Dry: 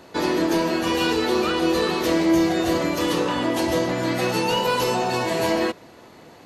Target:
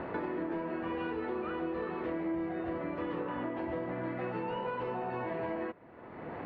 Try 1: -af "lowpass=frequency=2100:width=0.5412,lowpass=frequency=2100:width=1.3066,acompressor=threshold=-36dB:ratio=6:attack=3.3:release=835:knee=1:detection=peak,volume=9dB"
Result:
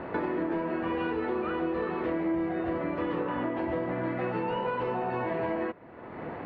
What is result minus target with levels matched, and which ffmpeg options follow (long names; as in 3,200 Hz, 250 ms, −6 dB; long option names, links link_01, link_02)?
downward compressor: peak gain reduction −5.5 dB
-af "lowpass=frequency=2100:width=0.5412,lowpass=frequency=2100:width=1.3066,acompressor=threshold=-42.5dB:ratio=6:attack=3.3:release=835:knee=1:detection=peak,volume=9dB"